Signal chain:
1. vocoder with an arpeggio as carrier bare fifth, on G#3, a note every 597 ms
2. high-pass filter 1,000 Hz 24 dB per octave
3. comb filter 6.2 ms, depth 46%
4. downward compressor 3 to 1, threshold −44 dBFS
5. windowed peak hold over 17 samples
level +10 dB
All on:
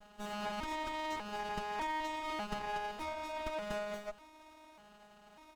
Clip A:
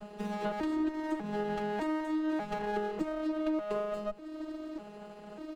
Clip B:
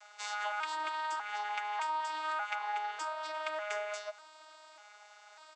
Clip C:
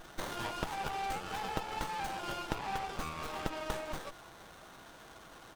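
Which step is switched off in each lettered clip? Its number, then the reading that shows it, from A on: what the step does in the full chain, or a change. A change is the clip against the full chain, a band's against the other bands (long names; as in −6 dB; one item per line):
2, 250 Hz band +15.0 dB
5, 250 Hz band −21.0 dB
1, 125 Hz band +7.5 dB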